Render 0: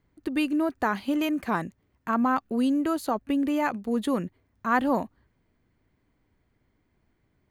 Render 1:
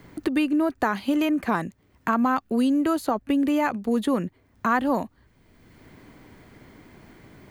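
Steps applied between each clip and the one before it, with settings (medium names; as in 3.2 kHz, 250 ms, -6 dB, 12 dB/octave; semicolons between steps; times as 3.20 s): three bands compressed up and down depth 70%; trim +2.5 dB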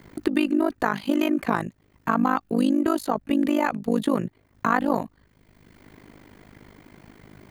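AM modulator 51 Hz, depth 85%; trim +4 dB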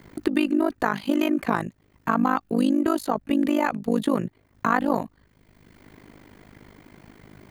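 no audible change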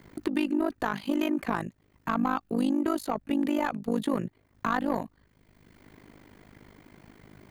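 saturation -12 dBFS, distortion -18 dB; trim -4 dB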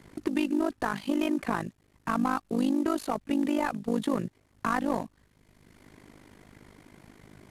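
CVSD coder 64 kbps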